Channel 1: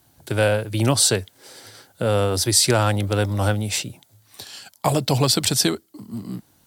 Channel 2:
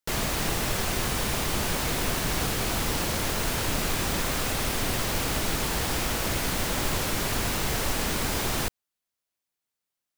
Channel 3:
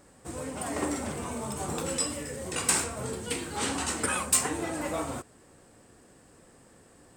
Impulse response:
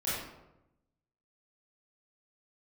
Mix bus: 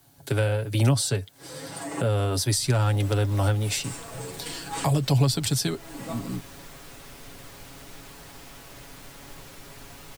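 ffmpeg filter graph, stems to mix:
-filter_complex "[0:a]volume=-1dB,asplit=2[a][b];[1:a]flanger=delay=9.8:depth=5.1:regen=-69:speed=0.38:shape=triangular,adelay=2450,volume=-14dB[c];[2:a]aecho=1:1:6.1:0.98,adelay=1150,volume=-6dB[d];[b]apad=whole_len=366850[e];[d][e]sidechaincompress=threshold=-36dB:ratio=8:attack=6.3:release=317[f];[a][c][f]amix=inputs=3:normalize=0,aecho=1:1:7.2:0.54,acrossover=split=190[g][h];[h]acompressor=threshold=-25dB:ratio=6[i];[g][i]amix=inputs=2:normalize=0"

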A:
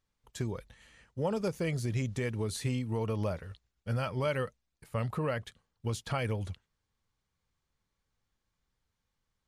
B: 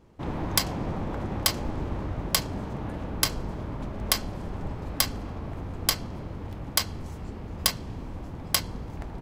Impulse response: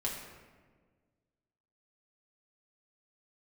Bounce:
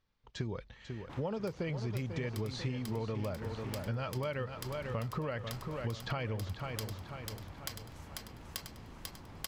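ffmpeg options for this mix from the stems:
-filter_complex "[0:a]lowpass=f=5.2k:w=0.5412,lowpass=f=5.2k:w=1.3066,volume=2.5dB,asplit=3[a][b][c];[b]volume=-10.5dB[d];[1:a]acrossover=split=960|5800[e][f][g];[e]acompressor=threshold=-45dB:ratio=4[h];[f]acompressor=threshold=-38dB:ratio=4[i];[g]acompressor=threshold=-38dB:ratio=4[j];[h][i][j]amix=inputs=3:normalize=0,adelay=900,volume=-6dB,asplit=2[k][l];[l]volume=-4.5dB[m];[c]apad=whole_len=446007[n];[k][n]sidechaincompress=threshold=-35dB:ratio=8:attack=49:release=302[o];[d][m]amix=inputs=2:normalize=0,aecho=0:1:493|986|1479|1972|2465|2958|3451:1|0.5|0.25|0.125|0.0625|0.0312|0.0156[p];[a][o][p]amix=inputs=3:normalize=0,acompressor=threshold=-33dB:ratio=6"

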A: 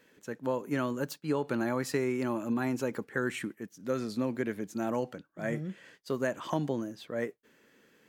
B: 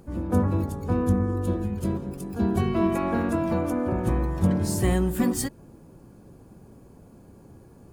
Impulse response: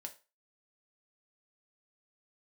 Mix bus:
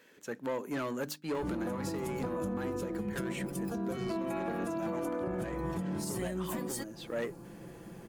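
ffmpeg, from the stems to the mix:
-filter_complex "[0:a]bandreject=f=50:t=h:w=6,bandreject=f=100:t=h:w=6,bandreject=f=150:t=h:w=6,bandreject=f=200:t=h:w=6,bandreject=f=250:t=h:w=6,bandreject=f=300:t=h:w=6,asoftclip=type=tanh:threshold=-30dB,volume=3dB[a];[1:a]aecho=1:1:5.9:0.64,acompressor=threshold=-24dB:ratio=6,adelay=1350,volume=2.5dB[b];[a][b]amix=inputs=2:normalize=0,lowshelf=f=150:g=-9,alimiter=level_in=2.5dB:limit=-24dB:level=0:latency=1:release=360,volume=-2.5dB"

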